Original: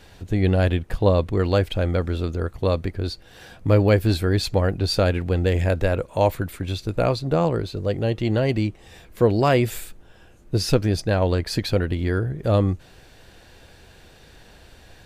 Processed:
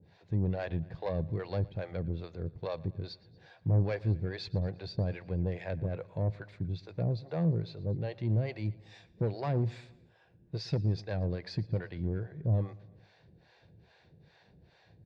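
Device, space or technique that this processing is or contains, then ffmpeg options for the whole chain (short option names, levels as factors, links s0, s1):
guitar amplifier with harmonic tremolo: -filter_complex "[0:a]acrossover=split=480[s0][s1];[s0]aeval=exprs='val(0)*(1-1/2+1/2*cos(2*PI*2.4*n/s))':c=same[s2];[s1]aeval=exprs='val(0)*(1-1/2-1/2*cos(2*PI*2.4*n/s))':c=same[s3];[s2][s3]amix=inputs=2:normalize=0,asoftclip=type=tanh:threshold=0.119,highpass=80,equalizer=f=110:t=q:w=4:g=8,equalizer=f=160:t=q:w=4:g=10,equalizer=f=270:t=q:w=4:g=-4,equalizer=f=1300:t=q:w=4:g=-8,equalizer=f=3000:t=q:w=4:g=-9,lowpass=f=4400:w=0.5412,lowpass=f=4400:w=1.3066,asettb=1/sr,asplit=3[s4][s5][s6];[s4]atrim=end=8.654[s7];[s5]atrim=start=8.65:end=9.29,asetpts=PTS-STARTPTS,afade=t=in:d=0.004:c=qsin,afade=t=out:st=0.636:d=0.004:c=qsin,aemphasis=mode=production:type=75kf[s8];[s6]atrim=start=9.286[s9];[s7][s8]acrossfade=d=0.004:c1=hsin:c2=qsin[s10];[s10][s9]acrossfade=d=0.004:c1=qsin:c2=hsin,aecho=1:1:116|232|348|464:0.0841|0.0454|0.0245|0.0132,volume=0.422"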